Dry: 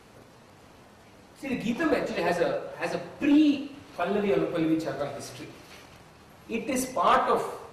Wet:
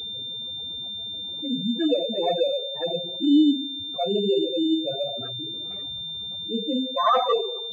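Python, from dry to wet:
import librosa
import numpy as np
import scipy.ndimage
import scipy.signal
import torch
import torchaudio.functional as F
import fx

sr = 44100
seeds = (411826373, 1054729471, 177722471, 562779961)

y = fx.spec_expand(x, sr, power=3.6)
y = fx.pwm(y, sr, carrier_hz=3600.0)
y = y * librosa.db_to_amplitude(3.5)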